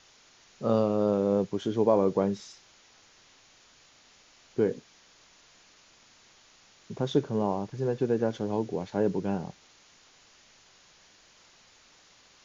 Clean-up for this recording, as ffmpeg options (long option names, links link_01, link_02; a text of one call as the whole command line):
ffmpeg -i in.wav -af "afwtdn=0.002" out.wav